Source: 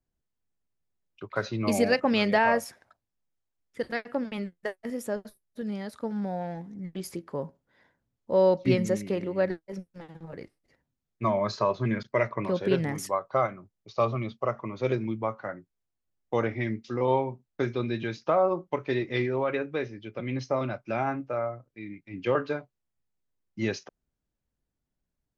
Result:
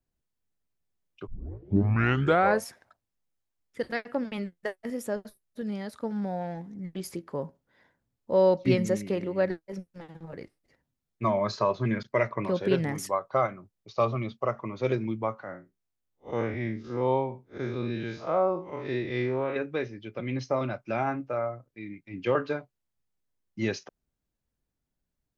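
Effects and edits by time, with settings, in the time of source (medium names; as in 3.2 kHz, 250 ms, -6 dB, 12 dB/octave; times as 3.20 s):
1.27 s: tape start 1.39 s
15.43–19.56 s: spectral blur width 114 ms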